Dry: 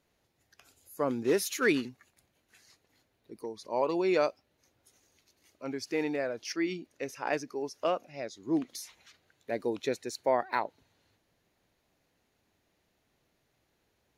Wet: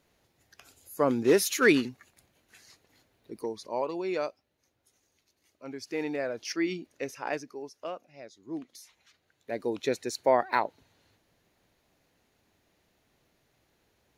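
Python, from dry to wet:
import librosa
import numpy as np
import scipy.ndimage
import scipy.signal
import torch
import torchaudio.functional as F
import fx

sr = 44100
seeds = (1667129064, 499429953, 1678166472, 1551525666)

y = fx.gain(x, sr, db=fx.line((3.52, 5.0), (3.92, -4.5), (5.64, -4.5), (6.4, 2.0), (7.03, 2.0), (7.85, -8.0), (8.79, -8.0), (10.02, 4.0)))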